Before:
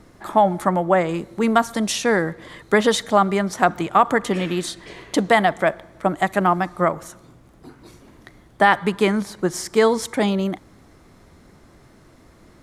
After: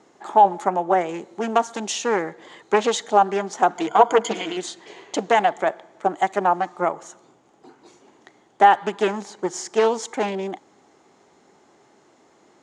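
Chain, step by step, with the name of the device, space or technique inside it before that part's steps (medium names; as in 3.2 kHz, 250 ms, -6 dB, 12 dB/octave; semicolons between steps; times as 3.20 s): 3.78–4.57 s: rippled EQ curve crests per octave 1.8, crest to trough 18 dB; full-range speaker at full volume (loudspeaker Doppler distortion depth 0.42 ms; cabinet simulation 260–8300 Hz, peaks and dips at 400 Hz +6 dB, 820 Hz +10 dB, 3 kHz +4 dB, 6.8 kHz +9 dB); trim -5.5 dB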